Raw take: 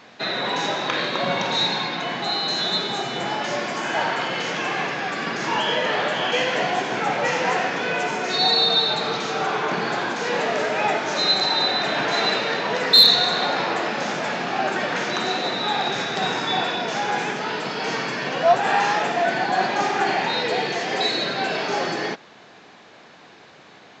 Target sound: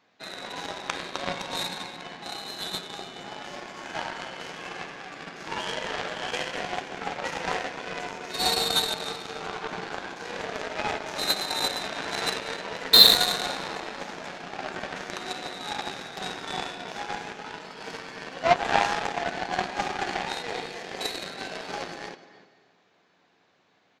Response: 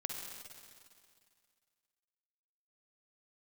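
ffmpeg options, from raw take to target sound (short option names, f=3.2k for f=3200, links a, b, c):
-filter_complex "[0:a]asplit=2[a][b];[b]adelay=297.4,volume=-10dB,highshelf=f=4k:g=-6.69[c];[a][c]amix=inputs=2:normalize=0,asplit=2[d][e];[1:a]atrim=start_sample=2205,adelay=11[f];[e][f]afir=irnorm=-1:irlink=0,volume=-7.5dB[g];[d][g]amix=inputs=2:normalize=0,aeval=exprs='0.891*(cos(1*acos(clip(val(0)/0.891,-1,1)))-cos(1*PI/2))+0.112*(cos(7*acos(clip(val(0)/0.891,-1,1)))-cos(7*PI/2))':c=same,volume=-1dB"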